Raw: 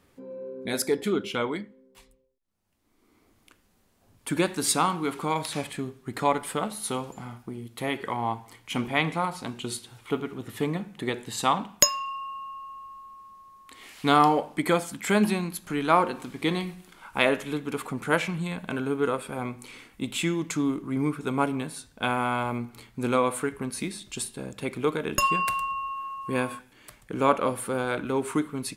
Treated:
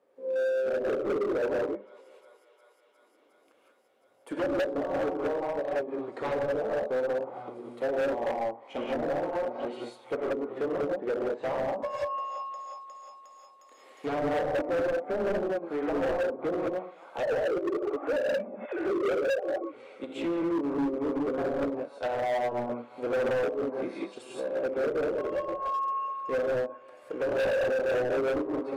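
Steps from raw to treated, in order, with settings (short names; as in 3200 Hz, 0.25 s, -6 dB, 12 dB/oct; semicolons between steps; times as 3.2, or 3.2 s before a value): 17.23–19.59 sine-wave speech; HPF 360 Hz 12 dB/oct; high shelf 2200 Hz -11.5 dB; thinning echo 0.358 s, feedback 84%, high-pass 540 Hz, level -23.5 dB; wavefolder -25 dBFS; bell 540 Hz +15 dB 1 oct; non-linear reverb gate 0.21 s rising, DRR -4.5 dB; treble ducked by the level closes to 600 Hz, closed at -18 dBFS; hard clip -22 dBFS, distortion -8 dB; upward expander 1.5:1, over -37 dBFS; gain -2.5 dB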